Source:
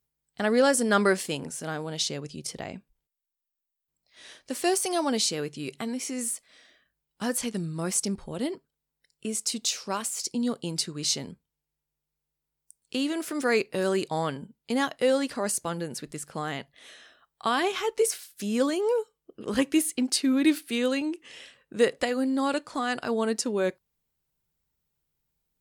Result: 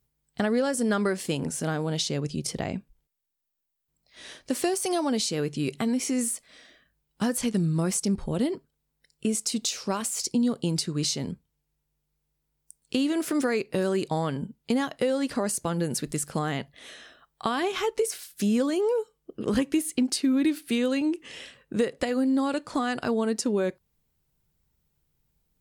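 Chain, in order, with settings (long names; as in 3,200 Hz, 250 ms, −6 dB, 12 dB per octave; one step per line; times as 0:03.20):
0:15.83–0:16.39: high-shelf EQ 4,500 Hz +6.5 dB
downward compressor 5 to 1, threshold −29 dBFS, peak gain reduction 12 dB
low-shelf EQ 340 Hz +7.5 dB
level +3.5 dB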